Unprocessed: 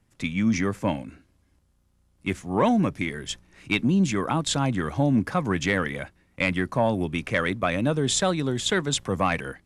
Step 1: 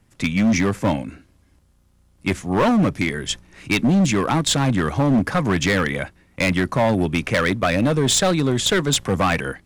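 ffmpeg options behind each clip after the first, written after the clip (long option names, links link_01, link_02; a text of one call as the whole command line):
ffmpeg -i in.wav -af "volume=20.5dB,asoftclip=hard,volume=-20.5dB,volume=7.5dB" out.wav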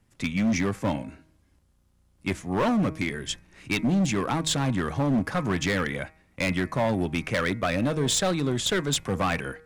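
ffmpeg -i in.wav -af "bandreject=frequency=158:width_type=h:width=4,bandreject=frequency=316:width_type=h:width=4,bandreject=frequency=474:width_type=h:width=4,bandreject=frequency=632:width_type=h:width=4,bandreject=frequency=790:width_type=h:width=4,bandreject=frequency=948:width_type=h:width=4,bandreject=frequency=1106:width_type=h:width=4,bandreject=frequency=1264:width_type=h:width=4,bandreject=frequency=1422:width_type=h:width=4,bandreject=frequency=1580:width_type=h:width=4,bandreject=frequency=1738:width_type=h:width=4,bandreject=frequency=1896:width_type=h:width=4,bandreject=frequency=2054:width_type=h:width=4,bandreject=frequency=2212:width_type=h:width=4,bandreject=frequency=2370:width_type=h:width=4,bandreject=frequency=2528:width_type=h:width=4,volume=-6.5dB" out.wav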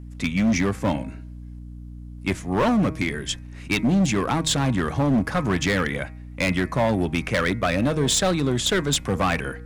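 ffmpeg -i in.wav -af "aeval=exprs='val(0)+0.01*(sin(2*PI*60*n/s)+sin(2*PI*2*60*n/s)/2+sin(2*PI*3*60*n/s)/3+sin(2*PI*4*60*n/s)/4+sin(2*PI*5*60*n/s)/5)':channel_layout=same,volume=3.5dB" out.wav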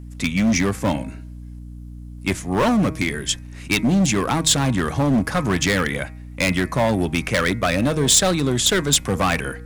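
ffmpeg -i in.wav -af "highshelf=frequency=5300:gain=8.5,volume=2dB" out.wav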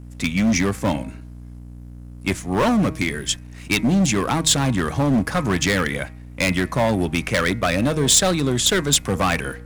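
ffmpeg -i in.wav -af "aeval=exprs='sgn(val(0))*max(abs(val(0))-0.00398,0)':channel_layout=same" out.wav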